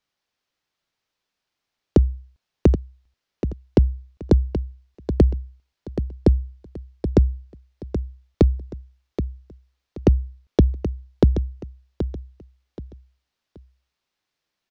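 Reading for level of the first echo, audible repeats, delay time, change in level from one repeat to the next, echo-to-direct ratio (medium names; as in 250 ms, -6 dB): -10.0 dB, 3, 777 ms, -10.5 dB, -9.5 dB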